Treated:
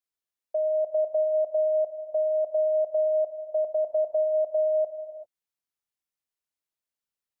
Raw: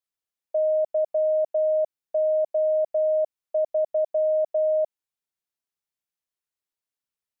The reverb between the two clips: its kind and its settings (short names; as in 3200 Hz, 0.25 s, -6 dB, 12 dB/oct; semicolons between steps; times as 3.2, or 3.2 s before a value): non-linear reverb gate 0.42 s flat, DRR 7.5 dB; gain -2.5 dB